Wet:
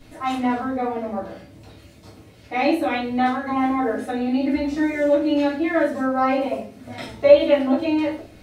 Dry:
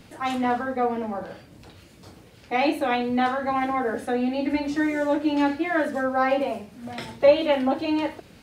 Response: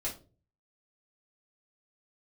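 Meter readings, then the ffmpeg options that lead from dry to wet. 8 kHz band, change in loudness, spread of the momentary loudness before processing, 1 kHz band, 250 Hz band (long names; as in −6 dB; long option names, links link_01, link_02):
can't be measured, +3.0 dB, 11 LU, +1.0 dB, +3.5 dB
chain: -filter_complex "[1:a]atrim=start_sample=2205[link_01];[0:a][link_01]afir=irnorm=-1:irlink=0,volume=-1dB"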